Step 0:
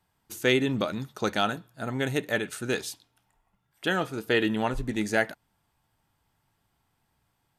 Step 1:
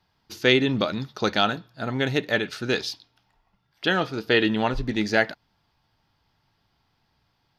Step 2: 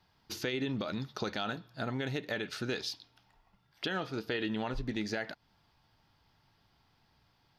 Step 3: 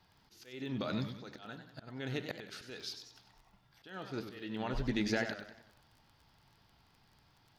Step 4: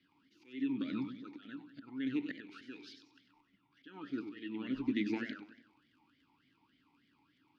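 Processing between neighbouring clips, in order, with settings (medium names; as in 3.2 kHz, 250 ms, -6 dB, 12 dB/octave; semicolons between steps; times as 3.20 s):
resonant high shelf 6.4 kHz -10 dB, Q 3; trim +3.5 dB
peak limiter -14.5 dBFS, peak gain reduction 10 dB; compression 2.5:1, threshold -36 dBFS, peak gain reduction 10.5 dB
slow attack 557 ms; crackle 17 per s -52 dBFS; modulated delay 94 ms, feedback 47%, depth 144 cents, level -9 dB; trim +1.5 dB
talking filter i-u 3.4 Hz; trim +10 dB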